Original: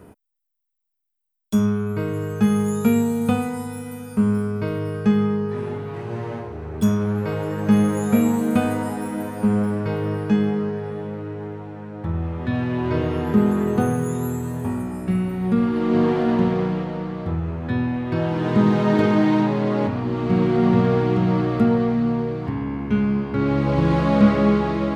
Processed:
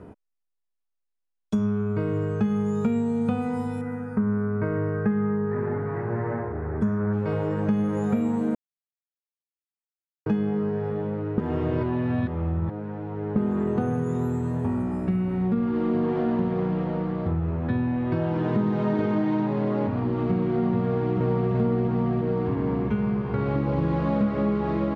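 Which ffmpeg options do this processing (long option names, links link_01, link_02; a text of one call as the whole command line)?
ffmpeg -i in.wav -filter_complex "[0:a]asettb=1/sr,asplit=3[link_01][link_02][link_03];[link_01]atrim=end=1.714[link_04];[link_02]atrim=start=1.71:end=3.28,asetpts=PTS-STARTPTS,afade=type=in:duration=0.004:curve=qsin,afade=type=out:start_time=1.566:duration=0.004:curve=qsin,lowpass=frequency=9900:width=0.5412,lowpass=frequency=9900:width=1.3066[link_05];[link_03]atrim=start=3.276[link_06];[link_04][link_05]acrossfade=duration=0.004:curve1=hsin:curve2=qsin[link_07];[link_07][link_06]acrossfade=duration=0.004:curve1=qsin:curve2=hsin,asettb=1/sr,asplit=3[link_08][link_09][link_10];[link_08]atrim=end=3.814[link_11];[link_09]atrim=start=3.81:end=7.13,asetpts=PTS-STARTPTS,afade=type=in:duration=0.004:curve=qsin,afade=type=out:start_time=3.316:duration=0.004:curve=qsin,highshelf=frequency=2400:width_type=q:width=3:gain=-9.5[link_12];[link_10]atrim=start=7.126[link_13];[link_11][link_12]acrossfade=duration=0.004:curve1=hsin:curve2=qsin[link_14];[link_14][link_13]acrossfade=duration=0.004:curve1=qsin:curve2=hsin,asplit=2[link_15][link_16];[link_16]afade=type=in:start_time=20.86:duration=0.01,afade=type=out:start_time=21.53:duration=0.01,aecho=0:1:340|680|1020|1360|1700|2040|2380|2720|3060|3400|3740|4080:1|0.7|0.49|0.343|0.2401|0.16807|0.117649|0.0823543|0.057648|0.0403536|0.0282475|0.0197733[link_17];[link_15][link_17]amix=inputs=2:normalize=0,asettb=1/sr,asplit=3[link_18][link_19][link_20];[link_18]atrim=end=22.884[link_21];[link_19]atrim=start=22.88:end=23.56,asetpts=PTS-STARTPTS,afade=type=in:duration=0.004:curve=qsin,afade=type=out:start_time=0.676:duration=0.004:curve=qsin,equalizer=frequency=290:width=3.1:gain=-12[link_22];[link_20]atrim=start=23.556[link_23];[link_21][link_22]acrossfade=duration=0.004:curve1=hsin:curve2=qsin[link_24];[link_24][link_23]acrossfade=duration=0.004:curve1=qsin:curve2=hsin,asplit=5[link_25][link_26][link_27][link_28][link_29];[link_25]atrim=end=8.55,asetpts=PTS-STARTPTS,afade=type=out:start_time=8.546:duration=0.004:curve=hsin[link_30];[link_26]atrim=start=8.55:end=10.26,asetpts=PTS-STARTPTS,volume=0[link_31];[link_27]atrim=start=10.26:end=11.382,asetpts=PTS-STARTPTS,afade=type=in:duration=0.004:curve=hsin[link_32];[link_28]atrim=start=11.378:end=13.362,asetpts=PTS-STARTPTS,areverse[link_33];[link_29]atrim=start=13.358[link_34];[link_30][link_31][link_32]concat=n=3:v=0:a=1[link_35];[link_35][link_33]acrossfade=duration=0.004:curve1=hsin:curve2=hsin[link_36];[link_36][link_34]acrossfade=duration=0.004:curve1=hsin:curve2=hsin,highshelf=frequency=2300:gain=-11,acompressor=threshold=-24dB:ratio=4,lowpass=7200,volume=2dB" out.wav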